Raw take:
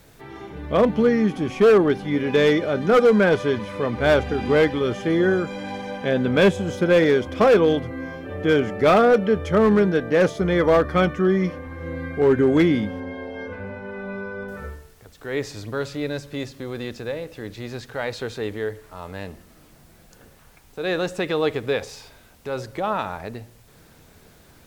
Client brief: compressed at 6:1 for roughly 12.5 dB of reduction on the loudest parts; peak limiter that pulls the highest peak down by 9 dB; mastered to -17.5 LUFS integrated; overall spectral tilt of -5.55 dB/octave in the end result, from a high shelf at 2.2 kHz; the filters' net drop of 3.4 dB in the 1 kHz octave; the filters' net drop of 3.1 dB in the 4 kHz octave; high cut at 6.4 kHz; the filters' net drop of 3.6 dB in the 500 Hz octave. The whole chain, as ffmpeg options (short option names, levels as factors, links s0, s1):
-af "lowpass=6400,equalizer=f=500:t=o:g=-3.5,equalizer=f=1000:t=o:g=-4,highshelf=f=2200:g=3,equalizer=f=4000:t=o:g=-6,acompressor=threshold=0.0355:ratio=6,volume=8.41,alimiter=limit=0.398:level=0:latency=1"